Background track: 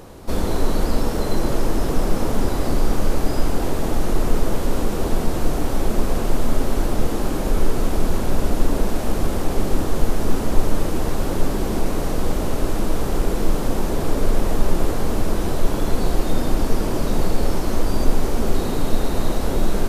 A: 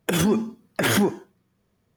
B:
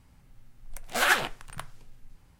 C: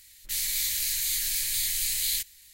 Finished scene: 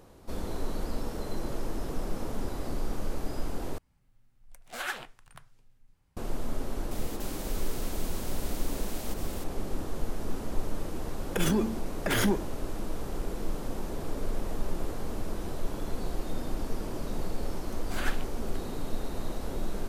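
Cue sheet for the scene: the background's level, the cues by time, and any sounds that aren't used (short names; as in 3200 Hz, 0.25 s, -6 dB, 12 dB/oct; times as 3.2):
background track -13.5 dB
3.78 replace with B -12 dB
6.91 add C -17 dB + spectral compressor 10:1
11.27 add A -6.5 dB + mismatched tape noise reduction decoder only
16.96 add B -13.5 dB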